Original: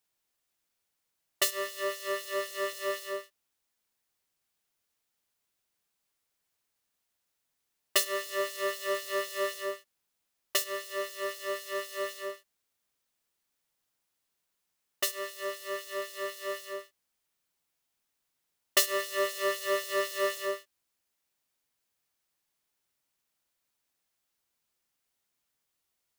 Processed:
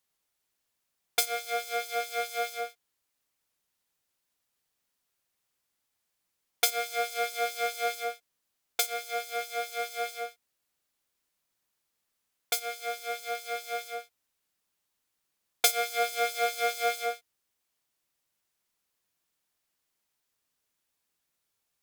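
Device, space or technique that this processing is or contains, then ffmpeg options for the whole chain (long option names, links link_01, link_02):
nightcore: -af "asetrate=52920,aresample=44100,volume=1.5dB"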